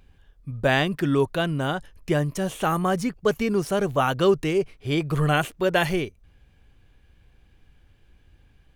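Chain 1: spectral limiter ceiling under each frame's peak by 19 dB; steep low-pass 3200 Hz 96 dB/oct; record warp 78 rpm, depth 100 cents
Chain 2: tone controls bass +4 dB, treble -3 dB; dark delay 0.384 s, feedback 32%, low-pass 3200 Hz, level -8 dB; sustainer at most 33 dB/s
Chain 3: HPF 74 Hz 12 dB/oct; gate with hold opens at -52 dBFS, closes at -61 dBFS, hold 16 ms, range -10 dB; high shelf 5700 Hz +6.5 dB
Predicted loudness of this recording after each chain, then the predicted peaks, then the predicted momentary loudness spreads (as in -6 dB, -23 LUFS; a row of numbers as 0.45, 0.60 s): -24.0, -21.0, -24.0 LUFS; -6.0, -7.0, -6.0 dBFS; 6, 9, 6 LU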